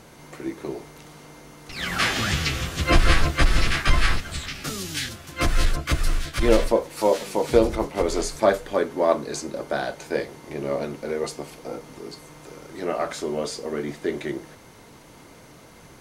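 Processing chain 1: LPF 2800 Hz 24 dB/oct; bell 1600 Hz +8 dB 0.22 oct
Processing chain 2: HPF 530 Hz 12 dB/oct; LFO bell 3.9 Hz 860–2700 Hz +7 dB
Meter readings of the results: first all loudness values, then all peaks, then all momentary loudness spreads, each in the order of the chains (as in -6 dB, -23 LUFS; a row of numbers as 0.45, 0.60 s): -24.5, -25.5 LUFS; -4.0, -5.0 dBFS; 15, 19 LU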